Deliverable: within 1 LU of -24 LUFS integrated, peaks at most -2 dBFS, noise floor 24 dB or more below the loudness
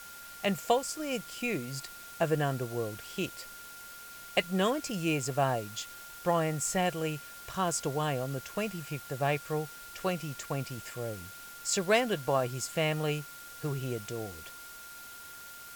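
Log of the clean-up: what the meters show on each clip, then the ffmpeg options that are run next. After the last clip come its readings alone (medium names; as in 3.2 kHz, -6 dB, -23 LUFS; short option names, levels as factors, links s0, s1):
steady tone 1.4 kHz; tone level -48 dBFS; noise floor -47 dBFS; noise floor target -57 dBFS; loudness -32.5 LUFS; peak level -12.0 dBFS; loudness target -24.0 LUFS
-> -af "bandreject=f=1400:w=30"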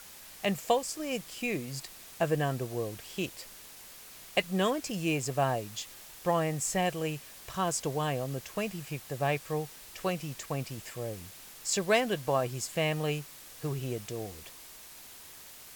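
steady tone not found; noise floor -50 dBFS; noise floor target -57 dBFS
-> -af "afftdn=nr=7:nf=-50"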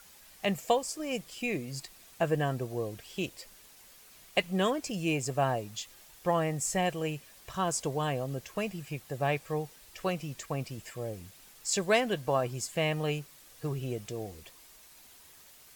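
noise floor -56 dBFS; noise floor target -57 dBFS
-> -af "afftdn=nr=6:nf=-56"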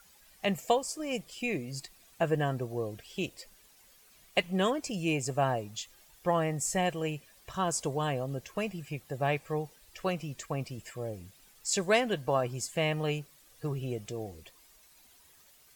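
noise floor -61 dBFS; loudness -32.5 LUFS; peak level -12.0 dBFS; loudness target -24.0 LUFS
-> -af "volume=2.66"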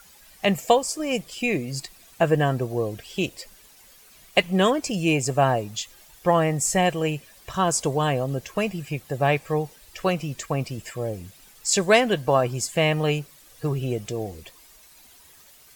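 loudness -24.0 LUFS; peak level -3.5 dBFS; noise floor -52 dBFS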